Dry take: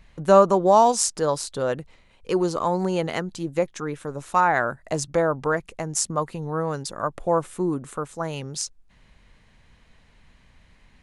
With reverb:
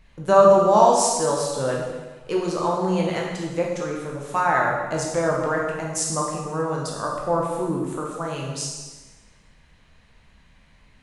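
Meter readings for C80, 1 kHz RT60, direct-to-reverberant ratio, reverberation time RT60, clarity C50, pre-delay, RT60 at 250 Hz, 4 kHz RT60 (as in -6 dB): 3.5 dB, 1.3 s, -2.5 dB, 1.3 s, 2.0 dB, 7 ms, 1.3 s, 1.2 s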